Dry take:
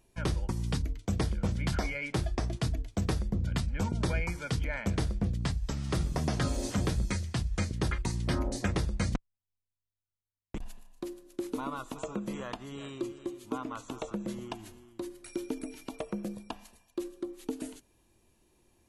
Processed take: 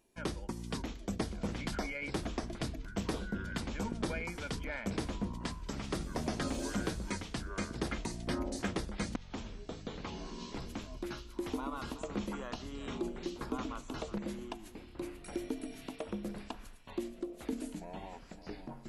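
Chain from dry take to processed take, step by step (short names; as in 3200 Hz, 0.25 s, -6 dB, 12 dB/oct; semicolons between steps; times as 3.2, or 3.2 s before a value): echoes that change speed 0.461 s, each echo -7 st, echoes 3, each echo -6 dB; resonant low shelf 170 Hz -7.5 dB, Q 1.5; gain -4 dB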